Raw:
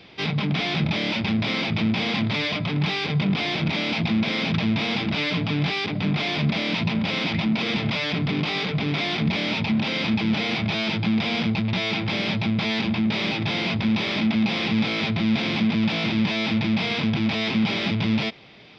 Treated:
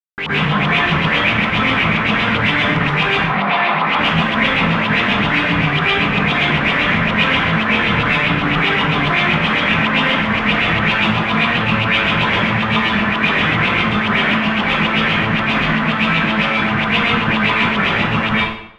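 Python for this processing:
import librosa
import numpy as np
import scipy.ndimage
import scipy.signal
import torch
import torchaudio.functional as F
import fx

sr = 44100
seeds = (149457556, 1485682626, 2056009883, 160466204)

y = fx.rider(x, sr, range_db=10, speed_s=0.5)
y = fx.schmitt(y, sr, flips_db=-33.0)
y = fx.filter_lfo_lowpass(y, sr, shape='saw_up', hz=7.6, low_hz=970.0, high_hz=3300.0, q=5.9)
y = fx.cabinet(y, sr, low_hz=200.0, low_slope=24, high_hz=4500.0, hz=(310.0, 450.0, 790.0, 1100.0, 1800.0, 3100.0), db=(-9, -4, 8, 4, -3, -6), at=(3.13, 3.87))
y = fx.rev_plate(y, sr, seeds[0], rt60_s=0.75, hf_ratio=0.8, predelay_ms=100, drr_db=-8.0)
y = y * 10.0 ** (-4.0 / 20.0)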